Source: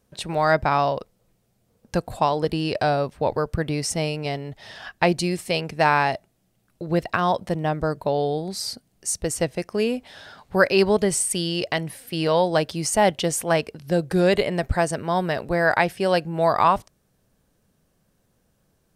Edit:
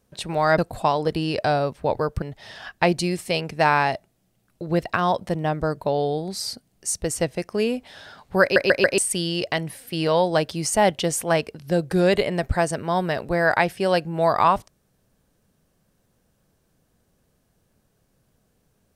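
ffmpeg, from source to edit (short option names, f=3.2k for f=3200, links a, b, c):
-filter_complex "[0:a]asplit=7[a][b][c][d][e][f][g];[a]atrim=end=0.582[h];[b]atrim=start=1.948:end=3.592[i];[c]atrim=start=4.418:end=10.762[j];[d]atrim=start=10.618:end=10.762[k];[e]atrim=start=10.618:end=10.762[l];[f]atrim=start=10.618:end=10.762[m];[g]atrim=start=11.178[n];[h][i]acrossfade=d=0.004:c1=hsin:c2=hsin[o];[o][j]acrossfade=d=0.004:c1=hsin:c2=hsin[p];[p][k]acrossfade=d=0.004:c1=hsin:c2=hsin[q];[q][l]acrossfade=d=0.004:c1=hsin:c2=hsin[r];[r][m]acrossfade=d=0.004:c1=hsin:c2=hsin[s];[s][n]acrossfade=d=0.004:c1=hsin:c2=hsin"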